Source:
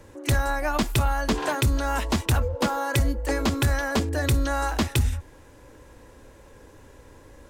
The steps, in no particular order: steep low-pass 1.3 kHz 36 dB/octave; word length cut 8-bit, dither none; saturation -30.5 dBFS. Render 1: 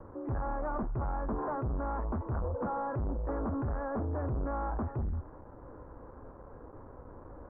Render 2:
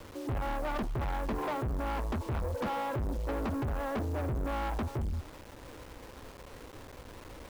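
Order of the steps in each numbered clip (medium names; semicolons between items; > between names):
word length cut > saturation > steep low-pass; steep low-pass > word length cut > saturation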